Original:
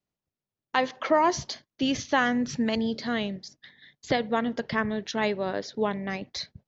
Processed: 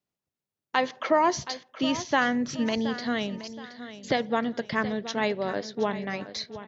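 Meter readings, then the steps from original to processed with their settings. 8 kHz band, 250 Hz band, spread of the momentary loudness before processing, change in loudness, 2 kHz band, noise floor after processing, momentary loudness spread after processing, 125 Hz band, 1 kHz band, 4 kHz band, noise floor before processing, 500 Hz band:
n/a, -0.5 dB, 10 LU, 0.0 dB, 0.0 dB, under -85 dBFS, 11 LU, -1.5 dB, 0.0 dB, 0.0 dB, under -85 dBFS, 0.0 dB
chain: low shelf 62 Hz -11.5 dB; feedback echo 0.722 s, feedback 35%, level -13.5 dB

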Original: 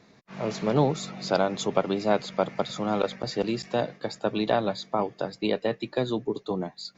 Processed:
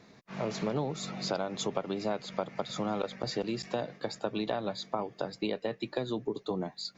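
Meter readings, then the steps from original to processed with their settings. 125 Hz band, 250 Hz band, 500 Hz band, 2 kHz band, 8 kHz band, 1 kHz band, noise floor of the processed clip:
-7.0 dB, -6.5 dB, -7.5 dB, -7.0 dB, n/a, -7.5 dB, -60 dBFS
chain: compressor 5:1, threshold -29 dBFS, peak gain reduction 12 dB

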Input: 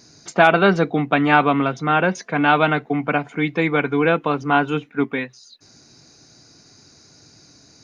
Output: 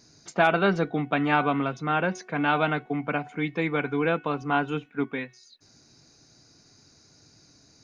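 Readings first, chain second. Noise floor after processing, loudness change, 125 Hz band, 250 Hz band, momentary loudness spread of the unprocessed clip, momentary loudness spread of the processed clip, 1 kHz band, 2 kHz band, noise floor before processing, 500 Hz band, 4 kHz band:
-58 dBFS, -7.5 dB, -6.5 dB, -7.0 dB, 8 LU, 8 LU, -7.5 dB, -8.0 dB, -51 dBFS, -7.5 dB, -7.5 dB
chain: low shelf 70 Hz +6 dB; de-hum 369.2 Hz, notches 9; gain -7.5 dB

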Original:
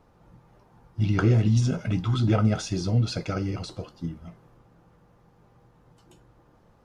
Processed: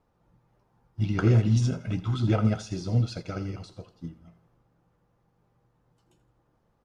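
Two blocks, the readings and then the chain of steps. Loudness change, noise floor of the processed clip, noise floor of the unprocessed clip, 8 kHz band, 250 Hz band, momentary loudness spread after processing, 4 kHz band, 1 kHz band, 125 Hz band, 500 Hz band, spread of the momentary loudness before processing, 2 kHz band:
-1.0 dB, -71 dBFS, -60 dBFS, n/a, -2.0 dB, 21 LU, -5.0 dB, -3.5 dB, -1.5 dB, -2.0 dB, 16 LU, -3.5 dB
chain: feedback echo 83 ms, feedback 41%, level -14 dB; upward expander 1.5:1, over -39 dBFS

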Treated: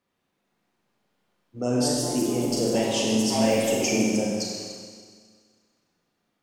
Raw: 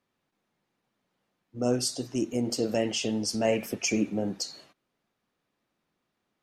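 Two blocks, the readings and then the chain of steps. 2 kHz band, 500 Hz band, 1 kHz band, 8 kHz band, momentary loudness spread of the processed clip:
+4.5 dB, +5.0 dB, +7.5 dB, +5.5 dB, 10 LU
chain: echoes that change speed 0.444 s, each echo +3 st, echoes 3, each echo -6 dB; Schroeder reverb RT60 1.8 s, combs from 32 ms, DRR -1.5 dB

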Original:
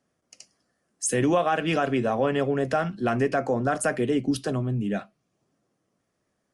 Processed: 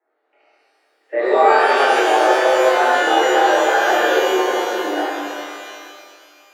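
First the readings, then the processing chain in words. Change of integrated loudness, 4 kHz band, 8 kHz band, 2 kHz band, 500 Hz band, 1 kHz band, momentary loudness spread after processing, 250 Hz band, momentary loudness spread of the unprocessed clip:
+10.0 dB, +15.0 dB, +2.0 dB, +14.5 dB, +10.0 dB, +14.5 dB, 13 LU, +1.0 dB, 5 LU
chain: flutter echo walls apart 4.4 m, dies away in 0.22 s; mistuned SSB +94 Hz 270–2100 Hz; shimmer reverb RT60 2.3 s, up +12 st, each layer -8 dB, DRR -10.5 dB; gain -1.5 dB

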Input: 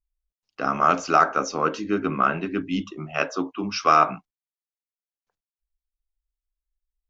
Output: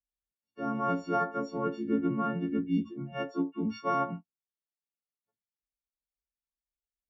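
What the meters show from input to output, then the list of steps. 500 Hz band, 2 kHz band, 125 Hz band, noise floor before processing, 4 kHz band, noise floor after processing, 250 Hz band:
-7.5 dB, -13.5 dB, -2.5 dB, under -85 dBFS, -16.0 dB, under -85 dBFS, -2.5 dB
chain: frequency quantiser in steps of 4 st; band-pass 200 Hz, Q 1.2

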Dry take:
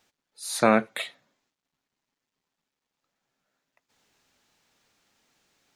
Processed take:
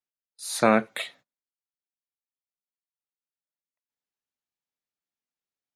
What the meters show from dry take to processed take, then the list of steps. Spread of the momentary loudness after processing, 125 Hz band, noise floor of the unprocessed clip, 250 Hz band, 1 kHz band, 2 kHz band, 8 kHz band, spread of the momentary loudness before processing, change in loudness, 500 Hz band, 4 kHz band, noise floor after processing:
16 LU, 0.0 dB, under -85 dBFS, 0.0 dB, 0.0 dB, 0.0 dB, 0.0 dB, 16 LU, +1.0 dB, 0.0 dB, 0.0 dB, under -85 dBFS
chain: gate -52 dBFS, range -29 dB

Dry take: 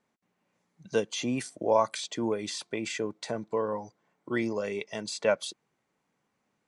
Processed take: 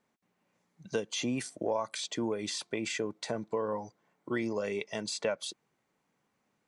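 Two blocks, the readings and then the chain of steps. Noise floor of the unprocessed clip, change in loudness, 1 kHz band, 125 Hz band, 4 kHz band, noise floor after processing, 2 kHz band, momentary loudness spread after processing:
-79 dBFS, -3.5 dB, -6.5 dB, -2.5 dB, -0.5 dB, -78 dBFS, -2.5 dB, 6 LU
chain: compressor 5:1, threshold -28 dBFS, peak gain reduction 10 dB

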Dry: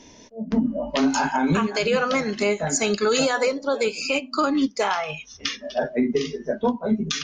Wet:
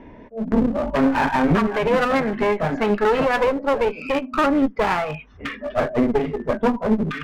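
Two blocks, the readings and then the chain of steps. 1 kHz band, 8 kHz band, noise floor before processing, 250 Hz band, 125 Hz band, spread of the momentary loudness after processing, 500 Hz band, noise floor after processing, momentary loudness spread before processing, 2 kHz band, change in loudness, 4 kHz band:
+4.0 dB, under -15 dB, -49 dBFS, +3.0 dB, +4.5 dB, 7 LU, +3.0 dB, -43 dBFS, 7 LU, +1.5 dB, +2.5 dB, -6.5 dB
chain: LPF 2000 Hz 24 dB/oct; low shelf 62 Hz +8 dB; one-sided clip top -32 dBFS, bottom -14 dBFS; gain +6.5 dB

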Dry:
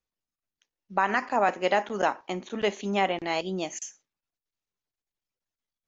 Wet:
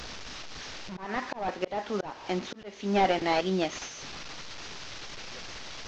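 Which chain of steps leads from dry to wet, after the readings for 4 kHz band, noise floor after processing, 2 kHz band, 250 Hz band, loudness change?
+1.5 dB, -46 dBFS, -5.0 dB, +1.0 dB, -5.0 dB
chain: delta modulation 32 kbps, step -37.5 dBFS; auto swell 0.374 s; gain +3.5 dB

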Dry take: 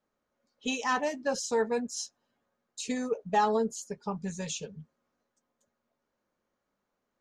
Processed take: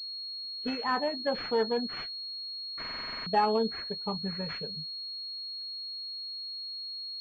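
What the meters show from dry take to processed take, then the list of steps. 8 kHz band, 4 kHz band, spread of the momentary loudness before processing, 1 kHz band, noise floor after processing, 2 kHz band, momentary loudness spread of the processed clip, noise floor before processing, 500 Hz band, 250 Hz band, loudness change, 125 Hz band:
under -25 dB, +11.0 dB, 13 LU, 0.0 dB, -39 dBFS, -1.5 dB, 8 LU, -83 dBFS, -0.5 dB, -1.0 dB, -1.0 dB, 0.0 dB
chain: stuck buffer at 2.8, samples 2048, times 9; pulse-width modulation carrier 4300 Hz

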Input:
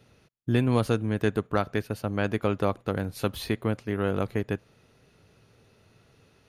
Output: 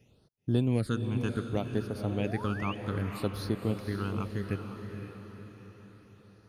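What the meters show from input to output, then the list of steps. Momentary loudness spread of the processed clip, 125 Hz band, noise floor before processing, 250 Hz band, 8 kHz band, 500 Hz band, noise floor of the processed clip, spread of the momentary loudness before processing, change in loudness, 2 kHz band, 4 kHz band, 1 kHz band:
16 LU, -2.0 dB, -63 dBFS, -3.0 dB, -5.5 dB, -7.0 dB, -64 dBFS, 7 LU, -4.5 dB, -6.5 dB, -5.0 dB, -6.5 dB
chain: phaser stages 8, 0.66 Hz, lowest notch 530–2600 Hz; painted sound rise, 2.07–2.75, 290–3100 Hz -39 dBFS; on a send: diffused feedback echo 0.508 s, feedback 49%, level -7 dB; on the sum: gain -4 dB

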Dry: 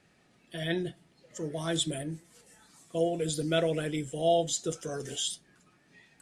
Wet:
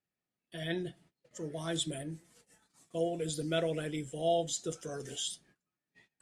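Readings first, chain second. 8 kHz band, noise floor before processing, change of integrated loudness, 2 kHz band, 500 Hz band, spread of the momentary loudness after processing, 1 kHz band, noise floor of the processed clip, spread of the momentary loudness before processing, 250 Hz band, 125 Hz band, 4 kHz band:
-4.5 dB, -66 dBFS, -4.5 dB, -4.5 dB, -4.5 dB, 13 LU, -4.5 dB, under -85 dBFS, 13 LU, -4.5 dB, -4.5 dB, -4.5 dB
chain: gate -57 dBFS, range -23 dB; gain -4.5 dB

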